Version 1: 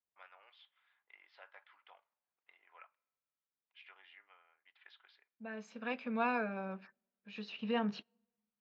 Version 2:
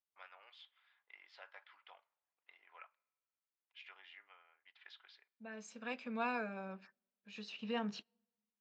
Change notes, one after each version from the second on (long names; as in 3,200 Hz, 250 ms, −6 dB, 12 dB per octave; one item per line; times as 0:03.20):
second voice −5.0 dB
master: remove high-frequency loss of the air 180 metres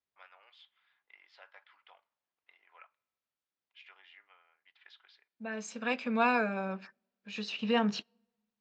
second voice +10.5 dB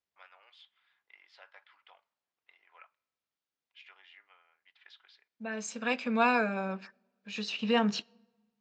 second voice: send +10.5 dB
master: add high-shelf EQ 7,300 Hz +9 dB